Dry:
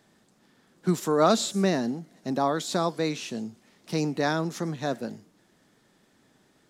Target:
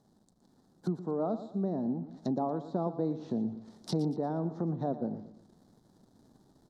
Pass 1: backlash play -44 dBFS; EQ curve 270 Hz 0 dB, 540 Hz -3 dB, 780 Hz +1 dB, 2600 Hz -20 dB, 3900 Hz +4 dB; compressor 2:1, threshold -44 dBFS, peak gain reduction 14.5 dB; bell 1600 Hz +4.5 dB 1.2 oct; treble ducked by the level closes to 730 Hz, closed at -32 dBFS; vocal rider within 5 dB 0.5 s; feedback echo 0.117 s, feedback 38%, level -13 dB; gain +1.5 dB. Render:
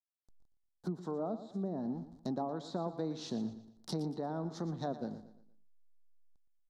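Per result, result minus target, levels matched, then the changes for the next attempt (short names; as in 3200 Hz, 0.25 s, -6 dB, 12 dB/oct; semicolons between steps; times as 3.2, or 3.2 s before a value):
backlash: distortion +10 dB; compressor: peak gain reduction +5.5 dB
change: backlash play -55 dBFS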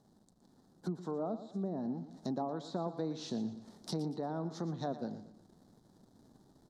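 compressor: peak gain reduction +5.5 dB
change: compressor 2:1, threshold -33 dBFS, peak gain reduction 9 dB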